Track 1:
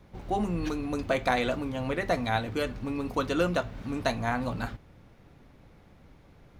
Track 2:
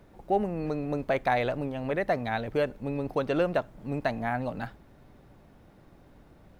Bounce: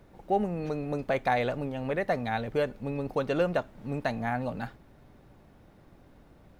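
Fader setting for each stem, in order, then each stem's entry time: −14.0, −1.0 decibels; 0.00, 0.00 seconds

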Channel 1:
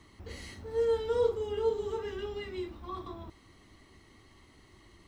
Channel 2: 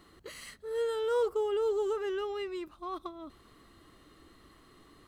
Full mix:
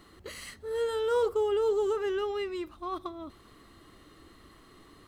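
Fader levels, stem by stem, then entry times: −11.5, +3.0 decibels; 0.00, 0.00 seconds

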